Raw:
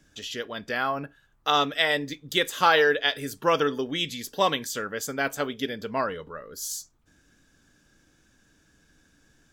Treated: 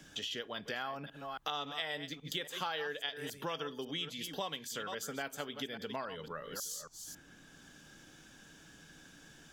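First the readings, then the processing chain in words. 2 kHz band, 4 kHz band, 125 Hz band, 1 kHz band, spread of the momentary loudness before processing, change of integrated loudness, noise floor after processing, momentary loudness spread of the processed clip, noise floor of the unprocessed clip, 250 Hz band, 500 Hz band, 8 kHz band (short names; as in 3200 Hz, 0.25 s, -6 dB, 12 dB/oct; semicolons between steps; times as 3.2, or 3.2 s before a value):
-14.5 dB, -10.5 dB, -10.0 dB, -15.0 dB, 13 LU, -13.5 dB, -59 dBFS, 18 LU, -64 dBFS, -12.5 dB, -15.5 dB, -8.5 dB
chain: reverse delay 0.275 s, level -13.5 dB; thirty-one-band EQ 160 Hz +6 dB, 800 Hz +4 dB, 3150 Hz +6 dB; compressor 3:1, threshold -36 dBFS, peak gain reduction 17 dB; low shelf 350 Hz -3 dB; three-band squash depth 40%; gain -3 dB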